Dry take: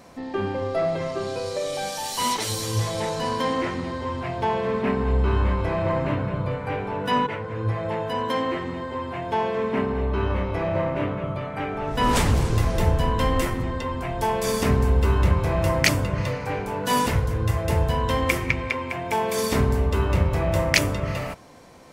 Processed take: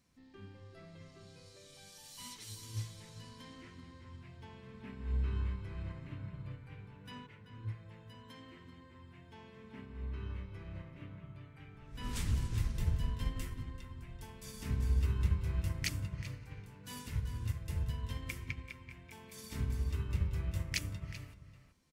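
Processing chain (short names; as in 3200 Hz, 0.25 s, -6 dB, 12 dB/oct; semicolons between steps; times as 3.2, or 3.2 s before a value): passive tone stack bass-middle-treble 6-0-2; outdoor echo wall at 66 m, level -8 dB; upward expander 1.5:1, over -45 dBFS; gain +2.5 dB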